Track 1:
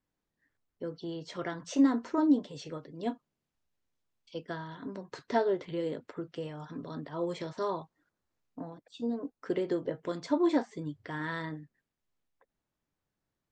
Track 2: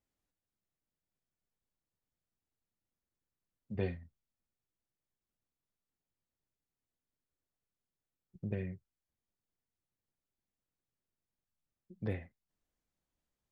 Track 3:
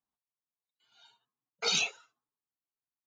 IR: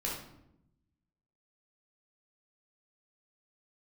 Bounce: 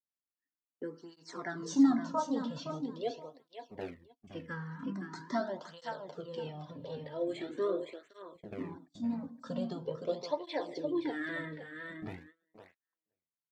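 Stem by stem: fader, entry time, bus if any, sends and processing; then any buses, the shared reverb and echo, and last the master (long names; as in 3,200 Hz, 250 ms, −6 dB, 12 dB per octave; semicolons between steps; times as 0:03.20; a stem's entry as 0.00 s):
+2.5 dB, 0.00 s, send −16 dB, echo send −5.5 dB, frequency shifter mixed with the dry sound −0.27 Hz
+2.5 dB, 0.00 s, no send, echo send −10 dB, half-wave rectification
−13.0 dB, 0.00 s, no send, no echo send, inverse Chebyshev band-stop filter 970–2,900 Hz; spectral tilt −2.5 dB per octave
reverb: on, RT60 0.85 s, pre-delay 11 ms
echo: repeating echo 517 ms, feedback 17%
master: noise gate −51 dBFS, range −23 dB; through-zero flanger with one copy inverted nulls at 0.43 Hz, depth 3.1 ms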